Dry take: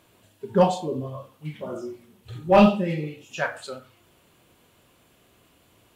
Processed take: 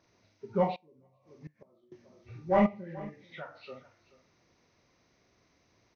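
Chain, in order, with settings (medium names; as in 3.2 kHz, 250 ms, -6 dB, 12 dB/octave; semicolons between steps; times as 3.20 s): knee-point frequency compression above 1.1 kHz 1.5:1; 2.66–3.68 s: compression 2.5:1, threshold -34 dBFS, peak gain reduction 12.5 dB; on a send: delay 431 ms -19 dB; 0.75–1.92 s: on the sum: inverted gate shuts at -26 dBFS, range -24 dB; trim -9 dB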